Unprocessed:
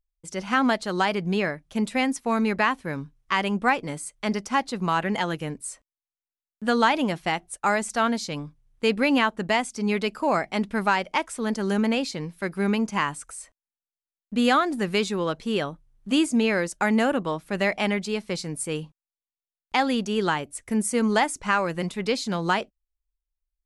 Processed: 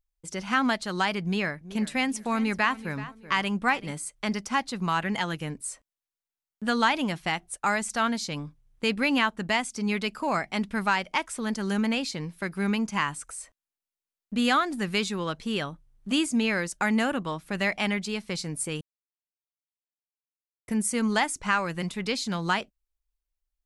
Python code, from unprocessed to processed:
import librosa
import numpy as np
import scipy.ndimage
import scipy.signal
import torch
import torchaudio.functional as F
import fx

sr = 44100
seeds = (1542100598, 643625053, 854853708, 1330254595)

y = fx.echo_feedback(x, sr, ms=380, feedback_pct=23, wet_db=-17.0, at=(1.23, 3.92))
y = fx.edit(y, sr, fx.silence(start_s=18.81, length_s=1.87), tone=tone)
y = fx.dynamic_eq(y, sr, hz=480.0, q=0.75, threshold_db=-36.0, ratio=4.0, max_db=-7)